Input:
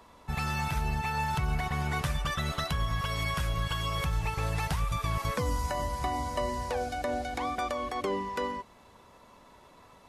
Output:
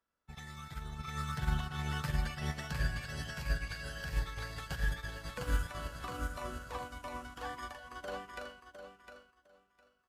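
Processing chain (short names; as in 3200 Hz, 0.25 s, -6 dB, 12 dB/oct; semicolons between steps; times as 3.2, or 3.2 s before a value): feedback echo 0.707 s, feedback 51%, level -3 dB; formant shift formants +6 st; upward expander 2.5:1, over -42 dBFS; gain -3 dB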